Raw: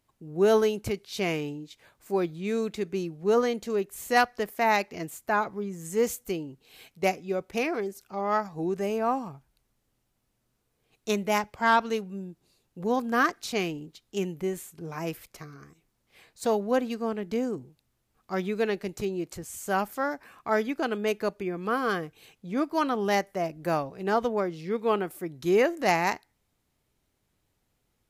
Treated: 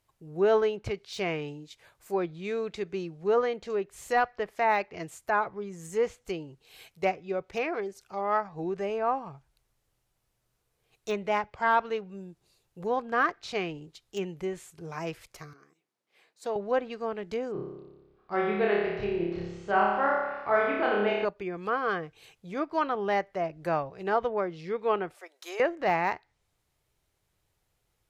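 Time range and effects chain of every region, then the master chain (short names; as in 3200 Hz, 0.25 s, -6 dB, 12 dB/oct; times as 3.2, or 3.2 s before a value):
15.53–16.56 ladder high-pass 190 Hz, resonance 30% + high shelf 8300 Hz -9.5 dB
17.52–21.25 LPF 4300 Hz 24 dB/oct + flutter echo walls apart 5 m, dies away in 1.1 s + mismatched tape noise reduction decoder only
25.14–25.6 inverse Chebyshev high-pass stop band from 160 Hz, stop band 60 dB + compressor 4:1, threshold -33 dBFS
whole clip: bell 240 Hz -10.5 dB 0.73 oct; treble ducked by the level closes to 2700 Hz, closed at -26.5 dBFS; de-esser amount 95%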